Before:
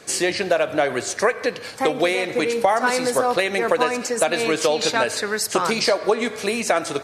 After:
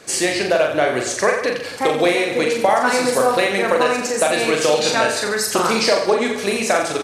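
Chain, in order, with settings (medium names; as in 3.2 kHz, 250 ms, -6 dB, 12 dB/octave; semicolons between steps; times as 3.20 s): reverse bouncing-ball echo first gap 40 ms, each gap 1.15×, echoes 5; crackle 17 per s -41 dBFS; trim +1 dB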